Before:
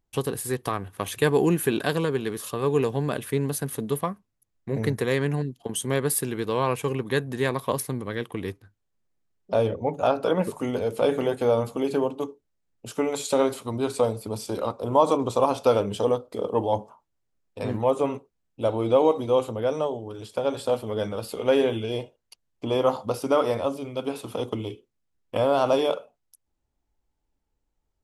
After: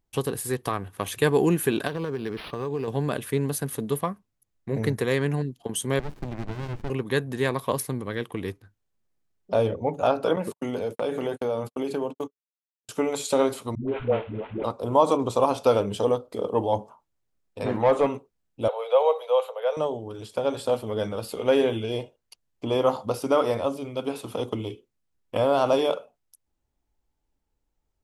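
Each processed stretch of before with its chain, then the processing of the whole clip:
1.87–2.88 s: compression 5:1, threshold -25 dBFS + decimation joined by straight lines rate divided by 6×
5.99–6.90 s: distance through air 150 m + sliding maximum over 65 samples
10.36–12.89 s: gate -33 dBFS, range -55 dB + high-pass 110 Hz + compression 2.5:1, threshold -25 dBFS
13.75–14.64 s: CVSD coder 16 kbps + band-stop 1.8 kHz, Q 19 + phase dispersion highs, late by 130 ms, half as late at 360 Hz
17.66–18.07 s: overdrive pedal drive 15 dB, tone 1.8 kHz, clips at -9.5 dBFS + flutter echo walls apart 9.2 m, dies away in 0.22 s
18.68–19.77 s: steep high-pass 450 Hz 96 dB/octave + high-order bell 6.8 kHz -10 dB 1.2 oct
whole clip: none

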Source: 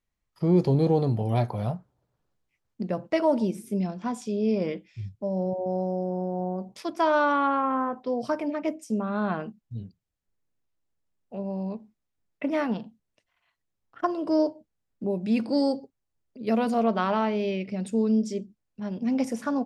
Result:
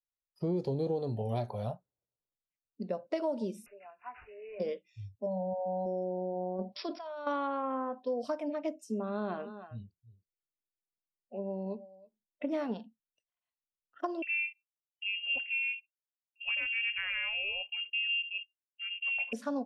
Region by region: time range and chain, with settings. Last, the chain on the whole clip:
3.66–4.60 s: high-pass 970 Hz + careless resampling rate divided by 8×, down none, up filtered
5.26–5.86 s: rippled Chebyshev low-pass 4.5 kHz, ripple 3 dB + comb 1.2 ms, depth 99%
6.59–7.27 s: brick-wall FIR low-pass 5.7 kHz + compressor with a negative ratio -33 dBFS
8.99–12.74 s: peaking EQ 350 Hz +8 dB 0.23 oct + delay 321 ms -12.5 dB
14.22–19.33 s: gate -39 dBFS, range -21 dB + frequency inversion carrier 3 kHz
whole clip: spectral noise reduction 17 dB; graphic EQ 500/2000/4000 Hz +7/-3/+5 dB; compression 5:1, threshold -21 dBFS; trim -8 dB

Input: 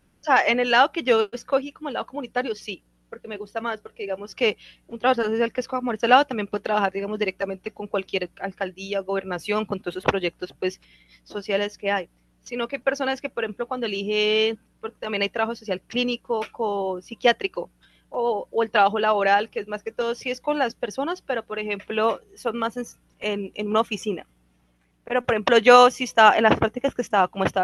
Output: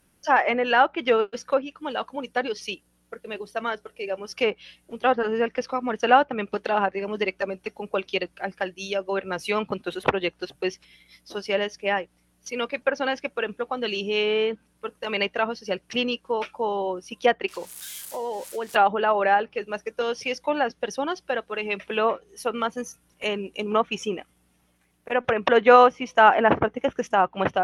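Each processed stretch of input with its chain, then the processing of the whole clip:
17.48–18.76 s: zero-crossing glitches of -27.5 dBFS + treble shelf 4.6 kHz -5 dB + compression 2.5:1, threshold -28 dBFS
whole clip: bass shelf 270 Hz -4.5 dB; low-pass that closes with the level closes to 1.8 kHz, closed at -17.5 dBFS; treble shelf 8.1 kHz +12 dB

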